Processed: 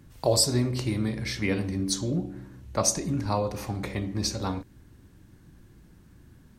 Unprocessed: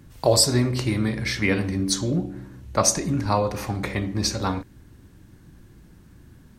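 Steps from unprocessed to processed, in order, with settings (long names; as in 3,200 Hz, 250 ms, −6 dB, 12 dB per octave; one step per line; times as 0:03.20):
dynamic equaliser 1,600 Hz, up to −5 dB, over −39 dBFS, Q 0.98
level −4 dB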